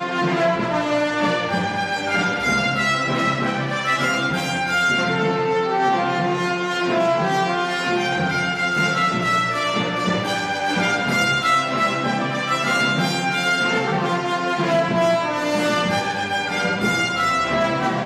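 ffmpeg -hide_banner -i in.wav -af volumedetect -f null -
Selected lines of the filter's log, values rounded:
mean_volume: -20.5 dB
max_volume: -8.0 dB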